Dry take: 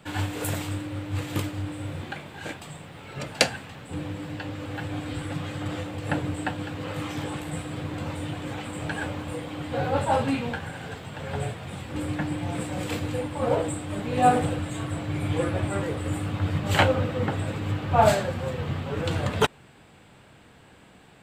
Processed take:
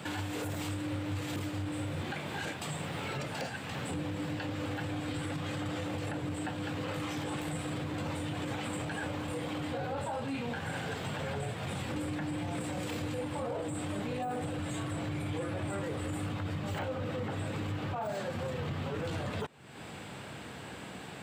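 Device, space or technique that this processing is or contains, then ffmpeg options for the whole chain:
broadcast voice chain: -filter_complex "[0:a]asettb=1/sr,asplit=3[link_01][link_02][link_03];[link_01]atrim=end=17.934[link_04];[link_02]atrim=start=17.93:end=18.35,asetpts=PTS-STARTPTS,afade=type=in:duration=0.004:curve=qsin,afade=type=out:start_time=0.416:duration=0.004:curve=qsin,highpass=140[link_05];[link_03]atrim=start=18.346[link_06];[link_04][link_05]acrossfade=duration=0.004:curve1=hsin:curve2=qsin[link_07];[link_07][link_06]acrossfade=duration=0.004:curve1=qsin:curve2=hsin,highpass=89,deesser=0.85,acompressor=threshold=-42dB:ratio=4,equalizer=frequency=5500:width_type=o:width=0.77:gain=2,alimiter=level_in=12.5dB:limit=-24dB:level=0:latency=1:release=12,volume=-12.5dB,volume=8.5dB"

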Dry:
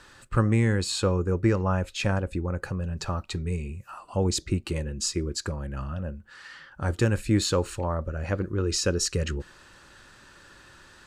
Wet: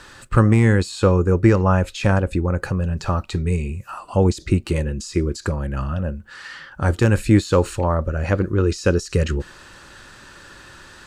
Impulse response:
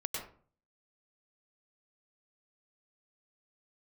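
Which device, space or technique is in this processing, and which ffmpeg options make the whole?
de-esser from a sidechain: -filter_complex "[0:a]asplit=2[link_01][link_02];[link_02]highpass=4400,apad=whole_len=487880[link_03];[link_01][link_03]sidechaincompress=threshold=-38dB:ratio=20:attack=0.61:release=39,volume=8.5dB"

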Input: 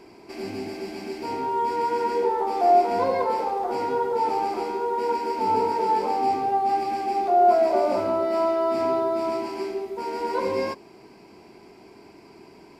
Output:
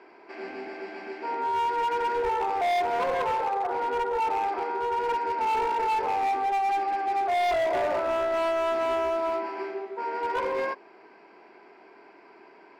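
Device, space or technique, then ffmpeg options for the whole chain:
megaphone: -filter_complex "[0:a]asettb=1/sr,asplit=3[link_01][link_02][link_03];[link_01]atrim=end=3.674[link_04];[link_02]atrim=start=3.67:end=4.48,asetpts=PTS-STARTPTS,afade=type=in:duration=0.004:curve=qsin,afade=type=out:start_time=0.806:duration=0.004:curve=qsin,lowpass=frequency=3100:poles=1[link_05];[link_03]atrim=start=4.476[link_06];[link_04][link_05]acrossfade=duration=0.004:curve1=hsin:curve2=qsin[link_07];[link_07][link_06]acrossfade=duration=0.004:curve1=qsin:curve2=hsin,highpass=470,lowpass=2500,equalizer=frequency=1600:width_type=o:width=0.55:gain=7,asoftclip=type=hard:threshold=-23dB"

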